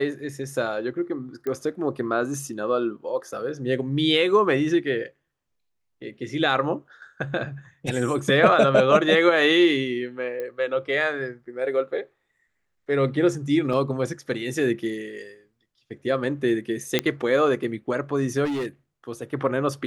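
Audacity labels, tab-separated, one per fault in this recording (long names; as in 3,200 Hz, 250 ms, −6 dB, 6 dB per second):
1.470000	1.470000	click −19 dBFS
10.400000	10.400000	click −20 dBFS
13.730000	13.730000	drop-out 4.2 ms
16.990000	16.990000	click −6 dBFS
18.440000	18.670000	clipping −24 dBFS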